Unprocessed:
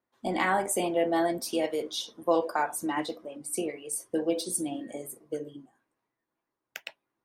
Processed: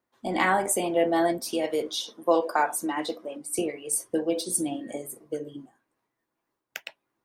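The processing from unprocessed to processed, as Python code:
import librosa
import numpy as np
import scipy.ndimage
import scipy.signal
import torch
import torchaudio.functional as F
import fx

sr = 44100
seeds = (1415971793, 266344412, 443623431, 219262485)

y = fx.highpass(x, sr, hz=200.0, slope=12, at=(1.89, 3.59))
y = fx.am_noise(y, sr, seeds[0], hz=5.7, depth_pct=55)
y = y * librosa.db_to_amplitude(6.5)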